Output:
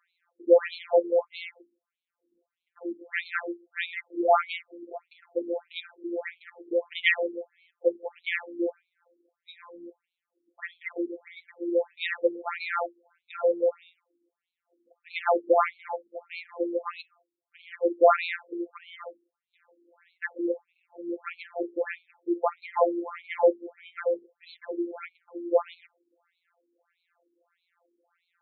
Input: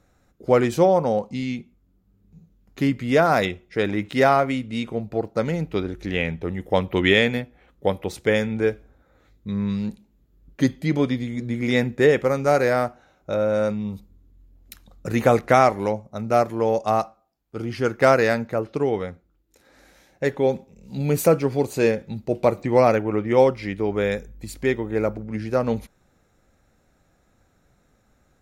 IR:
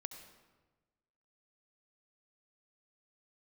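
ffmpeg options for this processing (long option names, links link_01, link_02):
-af "afftfilt=real='hypot(re,im)*cos(PI*b)':imag='0':win_size=1024:overlap=0.75,aemphasis=mode=production:type=cd,afftfilt=real='re*between(b*sr/1024,310*pow(3100/310,0.5+0.5*sin(2*PI*1.6*pts/sr))/1.41,310*pow(3100/310,0.5+0.5*sin(2*PI*1.6*pts/sr))*1.41)':imag='im*between(b*sr/1024,310*pow(3100/310,0.5+0.5*sin(2*PI*1.6*pts/sr))/1.41,310*pow(3100/310,0.5+0.5*sin(2*PI*1.6*pts/sr))*1.41)':win_size=1024:overlap=0.75,volume=3dB"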